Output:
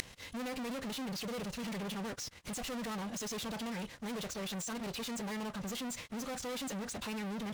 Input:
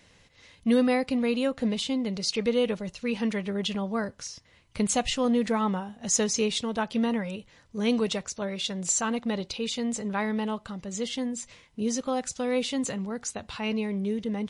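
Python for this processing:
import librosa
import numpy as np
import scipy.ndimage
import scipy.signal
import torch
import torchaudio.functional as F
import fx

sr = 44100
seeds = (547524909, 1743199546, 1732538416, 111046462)

y = fx.fuzz(x, sr, gain_db=50.0, gate_db=-60.0)
y = fx.gate_flip(y, sr, shuts_db=-24.0, range_db=-34)
y = fx.stretch_vocoder(y, sr, factor=0.52)
y = y * 10.0 ** (9.5 / 20.0)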